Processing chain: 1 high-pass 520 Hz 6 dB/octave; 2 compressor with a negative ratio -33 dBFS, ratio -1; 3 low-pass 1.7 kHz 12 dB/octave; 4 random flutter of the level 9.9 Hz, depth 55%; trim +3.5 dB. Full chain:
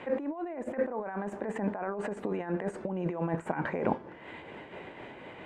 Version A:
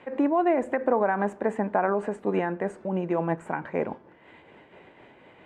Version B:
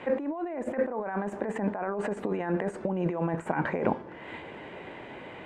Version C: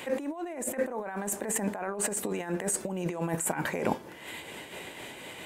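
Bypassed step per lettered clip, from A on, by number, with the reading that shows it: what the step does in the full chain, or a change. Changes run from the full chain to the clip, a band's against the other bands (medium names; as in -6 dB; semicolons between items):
2, crest factor change -4.5 dB; 4, loudness change +3.0 LU; 3, 2 kHz band +3.5 dB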